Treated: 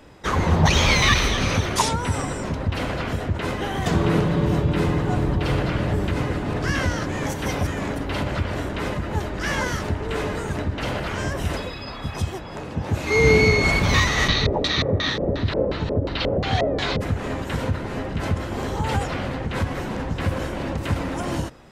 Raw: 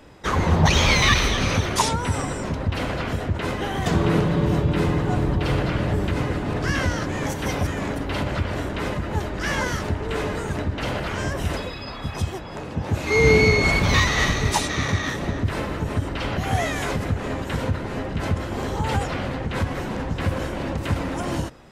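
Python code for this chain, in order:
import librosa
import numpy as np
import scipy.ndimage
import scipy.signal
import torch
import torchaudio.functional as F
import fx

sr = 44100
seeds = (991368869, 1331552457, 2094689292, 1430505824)

y = fx.filter_lfo_lowpass(x, sr, shape='square', hz=2.8, low_hz=520.0, high_hz=4100.0, q=4.2, at=(14.27, 17.0), fade=0.02)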